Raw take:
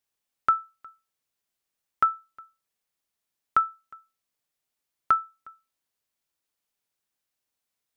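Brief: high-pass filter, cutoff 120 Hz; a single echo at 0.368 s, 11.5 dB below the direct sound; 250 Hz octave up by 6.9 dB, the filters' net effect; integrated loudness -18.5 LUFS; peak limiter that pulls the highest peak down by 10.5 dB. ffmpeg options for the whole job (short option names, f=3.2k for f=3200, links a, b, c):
-af "highpass=120,equalizer=f=250:t=o:g=9,alimiter=limit=-20.5dB:level=0:latency=1,aecho=1:1:368:0.266,volume=16dB"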